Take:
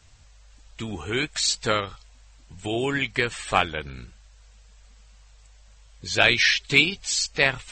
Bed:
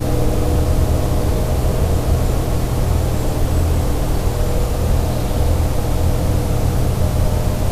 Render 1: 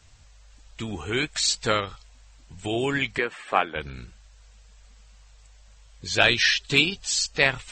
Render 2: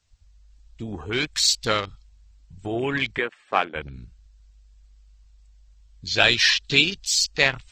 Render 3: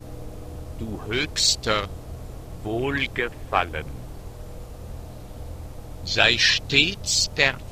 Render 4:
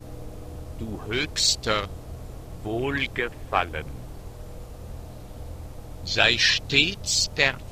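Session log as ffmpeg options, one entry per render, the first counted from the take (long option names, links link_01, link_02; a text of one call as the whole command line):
ffmpeg -i in.wav -filter_complex "[0:a]asettb=1/sr,asplit=3[link_01][link_02][link_03];[link_01]atrim=end=3.184[link_04];[link_02]atrim=start=3.18:end=3.76,asetpts=PTS-STARTPTS,afade=type=in:duration=0.004:curve=qsin,afade=type=out:start_time=0.576:duration=0.004:curve=qsin,acrossover=split=210 2500:gain=0.0631 1 0.178[link_05][link_06][link_07];[link_05][link_06][link_07]amix=inputs=3:normalize=0[link_08];[link_03]atrim=start=3.756[link_09];[link_04][link_08]acrossfade=duration=0.004:curve1=hsin:curve2=qsin[link_10];[link_10][link_09]acrossfade=duration=0.004:curve1=qsin:curve2=hsin,asettb=1/sr,asplit=3[link_11][link_12][link_13];[link_11]atrim=end=6.214[link_14];[link_12]atrim=start=6.21:end=7.39,asetpts=PTS-STARTPTS,afade=type=in:duration=0.004:curve=qsin,afade=type=out:start_time=1.176:duration=0.004:curve=qsin,bandreject=frequency=2200:width=7.3[link_15];[link_13]atrim=start=7.386[link_16];[link_14][link_15]acrossfade=duration=0.004:curve1=hsin:curve2=qsin[link_17];[link_17][link_16]acrossfade=duration=0.004:curve1=qsin:curve2=hsin" out.wav
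ffmpeg -i in.wav -af "afwtdn=0.0178,equalizer=frequency=4800:width_type=o:width=1.2:gain=5" out.wav
ffmpeg -i in.wav -i bed.wav -filter_complex "[1:a]volume=-20.5dB[link_01];[0:a][link_01]amix=inputs=2:normalize=0" out.wav
ffmpeg -i in.wav -af "volume=-1.5dB" out.wav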